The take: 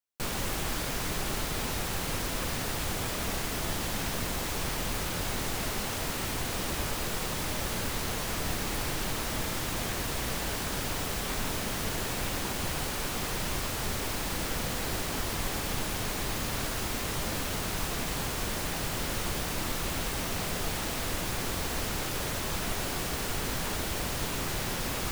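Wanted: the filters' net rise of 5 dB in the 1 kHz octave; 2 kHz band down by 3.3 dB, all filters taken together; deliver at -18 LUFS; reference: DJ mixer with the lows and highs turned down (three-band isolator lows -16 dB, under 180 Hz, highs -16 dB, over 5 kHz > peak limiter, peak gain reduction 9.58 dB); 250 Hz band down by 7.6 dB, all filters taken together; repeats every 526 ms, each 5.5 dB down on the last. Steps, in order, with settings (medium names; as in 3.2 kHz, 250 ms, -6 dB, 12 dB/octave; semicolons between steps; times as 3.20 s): three-band isolator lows -16 dB, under 180 Hz, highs -16 dB, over 5 kHz; peaking EQ 250 Hz -8 dB; peaking EQ 1 kHz +8.5 dB; peaking EQ 2 kHz -7 dB; feedback delay 526 ms, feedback 53%, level -5.5 dB; trim +21 dB; peak limiter -9.5 dBFS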